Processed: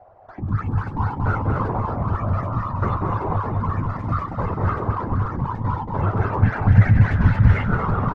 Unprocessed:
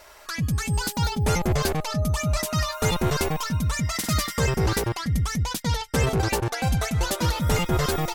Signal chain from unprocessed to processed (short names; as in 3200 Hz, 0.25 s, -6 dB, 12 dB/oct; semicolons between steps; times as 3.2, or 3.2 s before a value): 6.38–7.51 resonant low shelf 140 Hz +8 dB, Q 3; bouncing-ball echo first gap 0.23 s, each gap 0.9×, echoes 5; in parallel at -11 dB: overloaded stage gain 17 dB; on the sum: whisperiser; bell 100 Hz +11.5 dB 0.53 oct; envelope low-pass 730–1800 Hz up, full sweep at -5 dBFS; gain -7.5 dB